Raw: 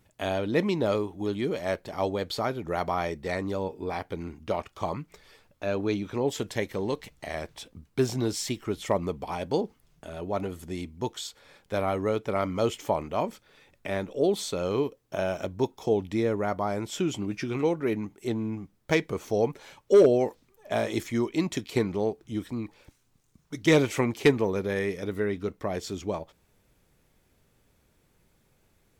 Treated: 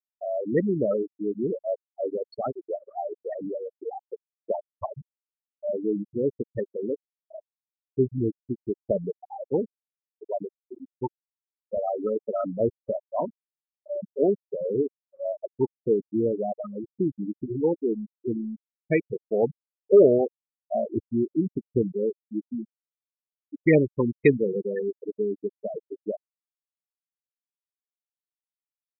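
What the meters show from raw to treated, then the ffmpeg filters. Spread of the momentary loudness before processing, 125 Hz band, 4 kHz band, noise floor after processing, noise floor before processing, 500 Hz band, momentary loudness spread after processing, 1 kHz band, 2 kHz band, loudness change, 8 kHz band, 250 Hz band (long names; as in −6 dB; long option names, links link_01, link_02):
12 LU, −1.5 dB, below −25 dB, below −85 dBFS, −67 dBFS, +2.0 dB, 15 LU, −4.5 dB, −5.0 dB, +1.0 dB, below −40 dB, +1.0 dB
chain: -af "afftfilt=real='re*gte(hypot(re,im),0.178)':imag='im*gte(hypot(re,im),0.178)':win_size=1024:overlap=0.75,afftfilt=real='re*(1-between(b*sr/1024,770*pow(4800/770,0.5+0.5*sin(2*PI*1.3*pts/sr))/1.41,770*pow(4800/770,0.5+0.5*sin(2*PI*1.3*pts/sr))*1.41))':imag='im*(1-between(b*sr/1024,770*pow(4800/770,0.5+0.5*sin(2*PI*1.3*pts/sr))/1.41,770*pow(4800/770,0.5+0.5*sin(2*PI*1.3*pts/sr))*1.41))':win_size=1024:overlap=0.75,volume=2.5dB"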